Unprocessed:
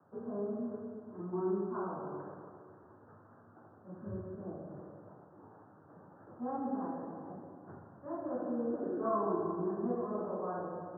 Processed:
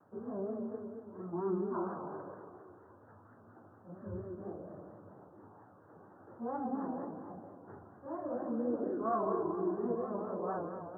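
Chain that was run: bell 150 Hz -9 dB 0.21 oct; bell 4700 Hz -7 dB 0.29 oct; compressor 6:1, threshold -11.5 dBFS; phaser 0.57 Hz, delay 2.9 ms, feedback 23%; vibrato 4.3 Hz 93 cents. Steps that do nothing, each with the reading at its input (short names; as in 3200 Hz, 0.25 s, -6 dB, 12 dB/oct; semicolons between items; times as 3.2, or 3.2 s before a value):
bell 4700 Hz: input band ends at 1400 Hz; compressor, threshold -11.5 dBFS: input peak -21.0 dBFS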